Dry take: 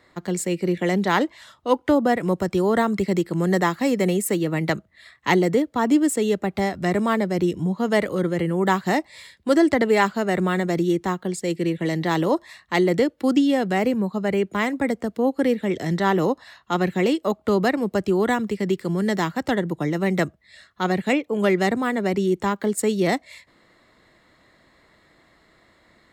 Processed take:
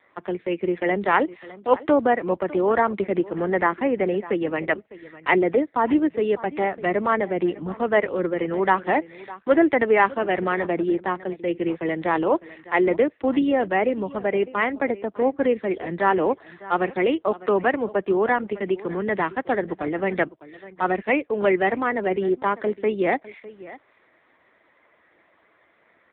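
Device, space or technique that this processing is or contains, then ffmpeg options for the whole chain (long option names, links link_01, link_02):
satellite phone: -filter_complex "[0:a]asettb=1/sr,asplit=3[link_01][link_02][link_03];[link_01]atrim=end=3.174[link_04];[link_02]atrim=start=3.17:end=4.23,asetpts=PTS-STARTPTS,afade=type=in:duration=0.004:curve=qsin,afade=type=out:start_time=1.056:duration=0.004:curve=qsin,acrossover=split=2900[link_05][link_06];[link_06]acompressor=threshold=-46dB:ratio=4:attack=1:release=60[link_07];[link_05][link_07]amix=inputs=2:normalize=0[link_08];[link_03]atrim=start=4.226[link_09];[link_04][link_08]acrossfade=duration=0.004:curve1=hsin:curve2=qsin[link_10];[link_10][link_09]acrossfade=duration=0.004:curve1=qsin:curve2=hsin,highpass=350,lowpass=3400,bandreject=frequency=3300:width=16,aecho=1:1:604:0.126,volume=3dB" -ar 8000 -c:a libopencore_amrnb -b:a 5900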